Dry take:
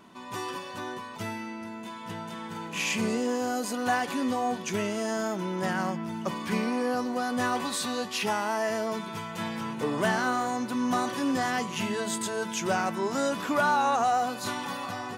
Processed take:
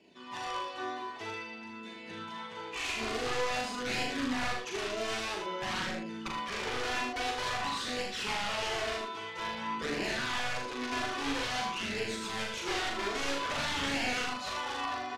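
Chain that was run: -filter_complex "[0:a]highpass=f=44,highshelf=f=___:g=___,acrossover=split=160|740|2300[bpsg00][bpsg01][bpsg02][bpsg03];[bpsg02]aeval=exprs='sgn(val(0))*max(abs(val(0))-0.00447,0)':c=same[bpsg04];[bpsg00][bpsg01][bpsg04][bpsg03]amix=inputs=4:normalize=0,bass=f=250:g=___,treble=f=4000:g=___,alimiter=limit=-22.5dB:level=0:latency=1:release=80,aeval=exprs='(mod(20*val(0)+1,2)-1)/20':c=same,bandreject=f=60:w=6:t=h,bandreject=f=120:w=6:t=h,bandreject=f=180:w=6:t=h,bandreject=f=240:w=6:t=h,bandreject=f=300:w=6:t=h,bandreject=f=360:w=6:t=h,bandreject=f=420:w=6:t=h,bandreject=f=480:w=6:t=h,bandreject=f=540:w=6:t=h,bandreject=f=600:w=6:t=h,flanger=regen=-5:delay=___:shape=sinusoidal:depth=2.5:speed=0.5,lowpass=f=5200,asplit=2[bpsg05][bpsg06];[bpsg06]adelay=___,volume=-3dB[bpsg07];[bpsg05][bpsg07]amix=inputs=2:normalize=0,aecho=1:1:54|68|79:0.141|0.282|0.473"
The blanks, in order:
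2900, 8.5, -14, -10, 0.4, 40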